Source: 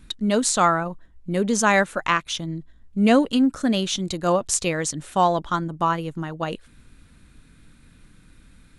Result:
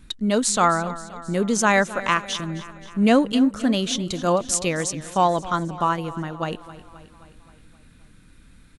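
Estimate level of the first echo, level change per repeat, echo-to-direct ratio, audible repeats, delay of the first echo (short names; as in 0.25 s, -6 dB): -16.5 dB, -4.5 dB, -14.5 dB, 5, 0.264 s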